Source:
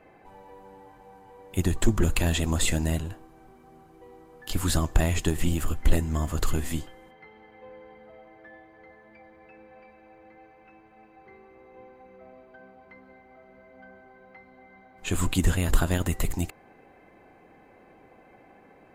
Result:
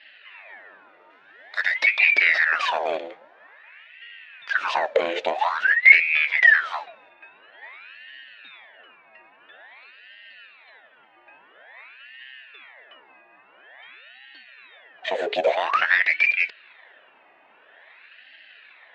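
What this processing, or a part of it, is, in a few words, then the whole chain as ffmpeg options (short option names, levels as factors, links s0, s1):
voice changer toy: -filter_complex "[0:a]asettb=1/sr,asplit=3[s0][s1][s2];[s0]atrim=end=1.104[s3];[s1]atrim=start=1.1:end=2.03,asetpts=PTS-STARTPTS,afade=t=in:d=0.004:c=qsin,afade=t=out:st=0.926:d=0.004:c=qsin,tiltshelf=f=970:g=-6[s4];[s2]atrim=start=2.026[s5];[s3][s4]acrossfade=d=0.004:c1=hsin:c2=qsin[s6];[s6][s5]acrossfade=d=0.004:c1=qsin:c2=hsin,aeval=exprs='val(0)*sin(2*PI*1400*n/s+1400*0.7/0.49*sin(2*PI*0.49*n/s))':c=same,highpass=490,equalizer=f=640:t=q:w=4:g=6,equalizer=f=1200:t=q:w=4:g=-5,equalizer=f=1800:t=q:w=4:g=9,equalizer=f=2600:t=q:w=4:g=6,equalizer=f=3700:t=q:w=4:g=5,lowpass=f=4200:w=0.5412,lowpass=f=4200:w=1.3066,volume=1.33"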